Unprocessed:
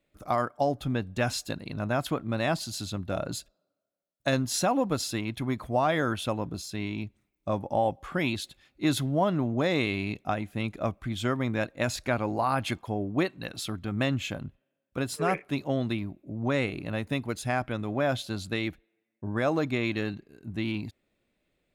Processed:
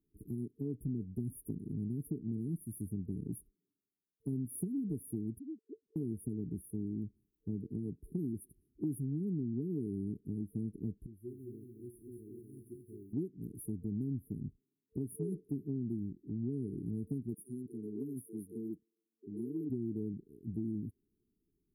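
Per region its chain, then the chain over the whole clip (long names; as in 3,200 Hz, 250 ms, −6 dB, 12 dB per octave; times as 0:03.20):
0:05.39–0:05.96: three sine waves on the formant tracks + high-pass filter 340 Hz 24 dB per octave + downward compressor 1.5 to 1, threshold −41 dBFS
0:11.06–0:13.13: tuned comb filter 360 Hz, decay 0.37 s, mix 90% + feedback echo at a low word length 219 ms, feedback 35%, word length 11 bits, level −4 dB
0:17.34–0:19.70: high-pass filter 270 Hz + multiband delay without the direct sound highs, lows 40 ms, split 400 Hz
whole clip: brick-wall band-stop 450–9,500 Hz; dynamic equaliser 190 Hz, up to +6 dB, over −41 dBFS, Q 1.1; downward compressor 3 to 1, threshold −33 dBFS; level −3 dB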